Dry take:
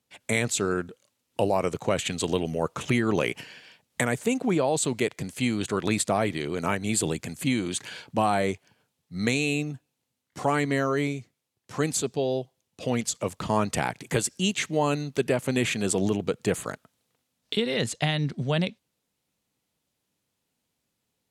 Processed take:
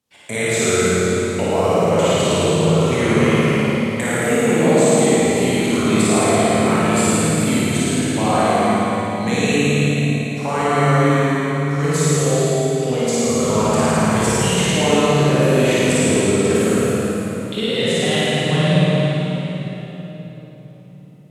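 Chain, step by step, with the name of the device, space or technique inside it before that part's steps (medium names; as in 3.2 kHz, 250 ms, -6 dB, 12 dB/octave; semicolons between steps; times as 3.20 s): tunnel (flutter echo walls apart 9.5 m, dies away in 1.4 s; reverberation RT60 4.1 s, pre-delay 18 ms, DRR -7.5 dB); trim -2 dB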